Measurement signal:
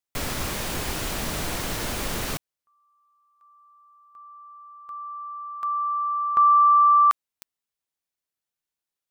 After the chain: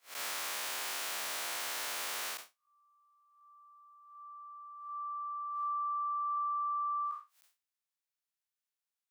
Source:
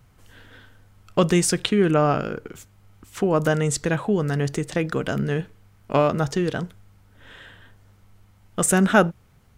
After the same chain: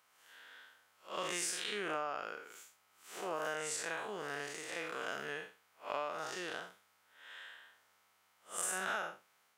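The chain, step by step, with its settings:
spectrum smeared in time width 142 ms
high-pass filter 850 Hz 12 dB per octave
downward compressor 16 to 1, threshold −30 dBFS
level −3 dB

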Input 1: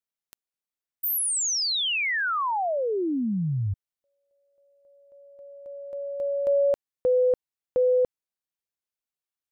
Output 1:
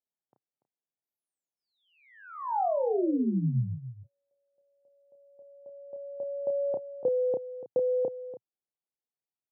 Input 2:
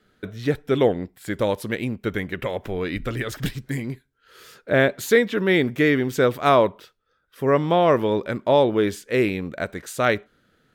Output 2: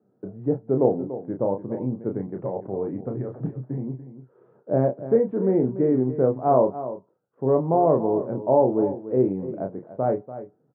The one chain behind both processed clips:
elliptic band-pass filter 120–850 Hz, stop band 70 dB
double-tracking delay 31 ms −6 dB
single-tap delay 289 ms −13 dB
level −1.5 dB

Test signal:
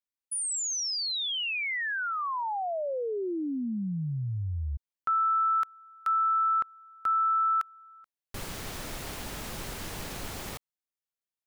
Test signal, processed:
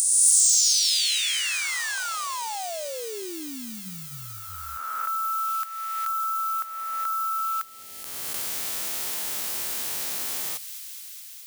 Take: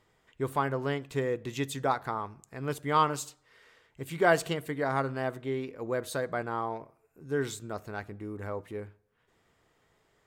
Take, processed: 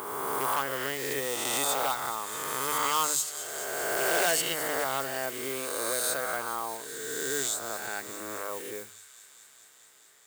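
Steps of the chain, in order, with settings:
peak hold with a rise ahead of every peak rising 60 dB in 1.85 s
high-shelf EQ 9,700 Hz −3 dB
on a send: delay with a high-pass on its return 211 ms, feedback 82%, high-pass 2,600 Hz, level −14 dB
on the sum: gain into a clipping stage and back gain 18 dB
noise that follows the level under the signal 25 dB
high-pass filter 50 Hz
RIAA equalisation recording
in parallel at 0 dB: downward compressor, threshold −31 dBFS
on the sum: mains-hum notches 50/100/150/200 Hz
level −6 dB

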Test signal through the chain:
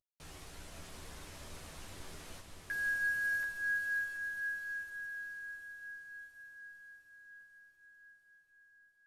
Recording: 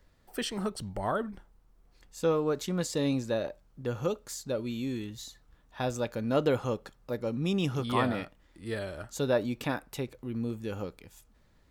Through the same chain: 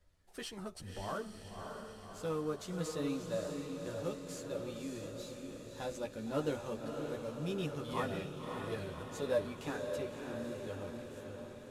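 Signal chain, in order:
variable-slope delta modulation 64 kbit/s
multi-voice chorus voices 6, 0.21 Hz, delay 12 ms, depth 1.8 ms
feedback delay with all-pass diffusion 581 ms, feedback 63%, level −5 dB
level −6.5 dB

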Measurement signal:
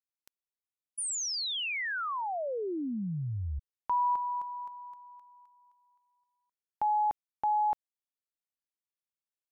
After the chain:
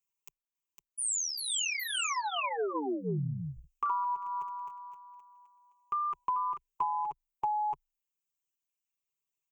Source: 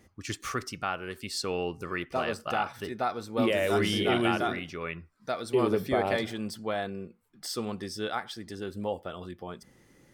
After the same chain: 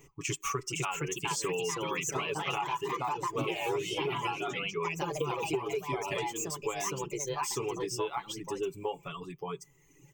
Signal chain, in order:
comb filter 7.1 ms, depth 79%
reverb reduction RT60 1.3 s
high-shelf EQ 10,000 Hz +6 dB
delay with pitch and tempo change per echo 551 ms, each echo +3 semitones, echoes 2
EQ curve with evenly spaced ripples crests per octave 0.72, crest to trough 15 dB
downward compressor 12 to 1, threshold −28 dBFS
level −1 dB

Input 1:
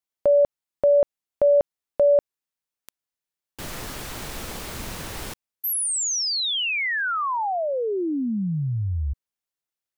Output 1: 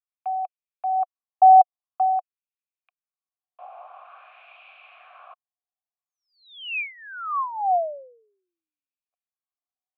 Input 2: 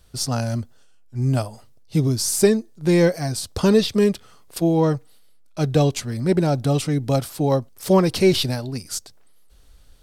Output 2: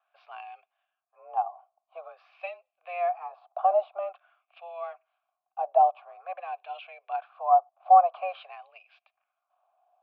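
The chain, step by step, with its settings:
single-sideband voice off tune +180 Hz 390–3,500 Hz
auto-filter band-pass sine 0.48 Hz 800–2,500 Hz
formant filter a
level +8 dB

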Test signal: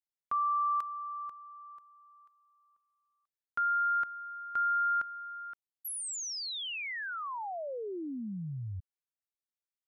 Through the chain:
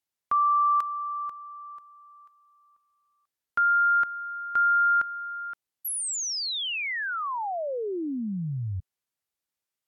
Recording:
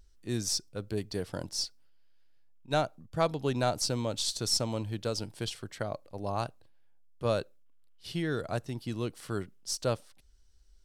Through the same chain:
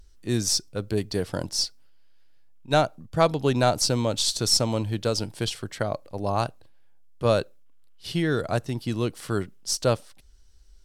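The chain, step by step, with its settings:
level +7.5 dB
Ogg Vorbis 128 kbit/s 44,100 Hz

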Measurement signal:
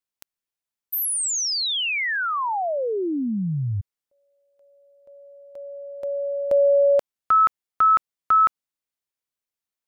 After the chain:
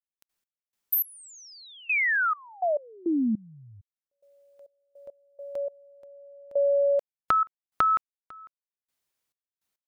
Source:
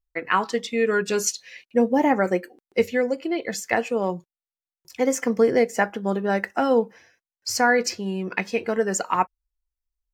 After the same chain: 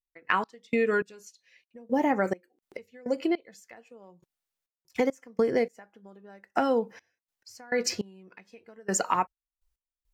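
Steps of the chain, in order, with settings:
downward compressor 4 to 1, threshold −31 dBFS
gate pattern "..x..xx......xxx" 103 BPM −24 dB
level +7 dB

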